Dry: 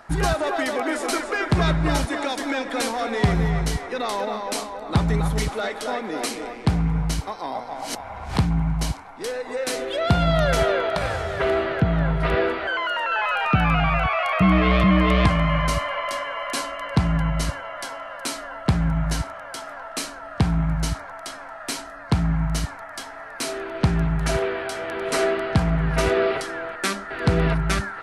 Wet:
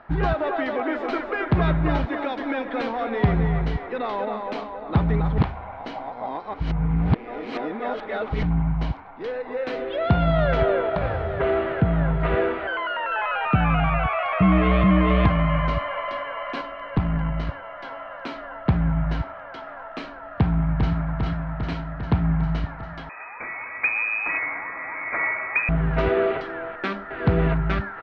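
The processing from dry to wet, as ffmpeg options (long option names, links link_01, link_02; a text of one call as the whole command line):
ffmpeg -i in.wav -filter_complex "[0:a]asettb=1/sr,asplit=3[link_01][link_02][link_03];[link_01]atrim=end=10.624[link_04];[link_02]atrim=start=10.62:end=11.44,asetpts=PTS-STARTPTS,afade=type=in:duration=0.004:curve=qsin,afade=type=out:start_time=0.816:duration=0.004:curve=qsin,tiltshelf=frequency=810:gain=3[link_05];[link_03]atrim=start=11.436[link_06];[link_04][link_05]acrossfade=duration=0.004:curve1=hsin:curve2=qsin[link_07];[link_07][link_06]acrossfade=duration=0.004:curve1=qsin:curve2=hsin,asettb=1/sr,asplit=3[link_08][link_09][link_10];[link_08]atrim=end=16.614[link_11];[link_09]atrim=start=16.61:end=17.85,asetpts=PTS-STARTPTS,afade=type=in:duration=0.004:curve=qsin,afade=type=out:start_time=1.236:duration=0.004:curve=qsin,aeval=exprs='(tanh(3.16*val(0)+0.5)-tanh(0.5))/3.16':channel_layout=same[link_12];[link_10]atrim=start=17.846[link_13];[link_11][link_12]acrossfade=duration=0.004:curve1=hsin:curve2=qsin[link_14];[link_14][link_13]acrossfade=duration=0.004:curve1=qsin:curve2=hsin,asplit=2[link_15][link_16];[link_16]afade=type=in:start_time=20.36:duration=0.01,afade=type=out:start_time=20.96:duration=0.01,aecho=0:1:400|800|1200|1600|2000|2400|2800|3200|3600|4000|4400|4800:0.630957|0.44167|0.309169|0.216418|0.151493|0.106045|0.0742315|0.0519621|0.0363734|0.0254614|0.017823|0.0124761[link_17];[link_15][link_17]amix=inputs=2:normalize=0,asettb=1/sr,asplit=3[link_18][link_19][link_20];[link_18]atrim=end=23.094[link_21];[link_19]atrim=start=23.09:end=25.69,asetpts=PTS-STARTPTS,afade=type=in:duration=0.004:curve=qsin,afade=type=out:start_time=2.596:duration=0.004:curve=qsin,lowpass=frequency=2200:width_type=q:width=0.5098,lowpass=frequency=2200:width_type=q:width=0.6013,lowpass=frequency=2200:width_type=q:width=0.9,lowpass=frequency=2200:width_type=q:width=2.563,afreqshift=-2600[link_22];[link_20]atrim=start=25.686[link_23];[link_21][link_22]acrossfade=duration=0.004:curve1=hsin:curve2=qsin[link_24];[link_24][link_23]acrossfade=duration=0.004:curve1=qsin:curve2=hsin,asplit=3[link_25][link_26][link_27];[link_25]atrim=end=5.382[link_28];[link_26]atrim=start=5.378:end=8.432,asetpts=PTS-STARTPTS,areverse[link_29];[link_27]atrim=start=8.428[link_30];[link_28][link_29]acrossfade=duration=0.004:curve1=hsin:curve2=hsin[link_31];[link_31][link_30]acrossfade=duration=0.004:curve1=hsin:curve2=hsin,lowpass=frequency=3500:width=0.5412,lowpass=frequency=3500:width=1.3066,highshelf=frequency=2300:gain=-8" out.wav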